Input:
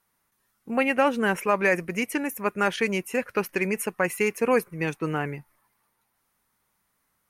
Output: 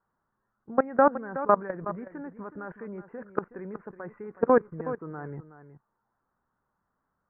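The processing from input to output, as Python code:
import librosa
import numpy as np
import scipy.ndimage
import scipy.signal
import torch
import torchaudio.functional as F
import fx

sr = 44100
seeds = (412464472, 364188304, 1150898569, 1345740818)

p1 = scipy.signal.sosfilt(scipy.signal.butter(8, 1600.0, 'lowpass', fs=sr, output='sos'), x)
p2 = fx.level_steps(p1, sr, step_db=21)
p3 = p2 + fx.echo_single(p2, sr, ms=370, db=-13.0, dry=0)
y = p3 * librosa.db_to_amplitude(4.0)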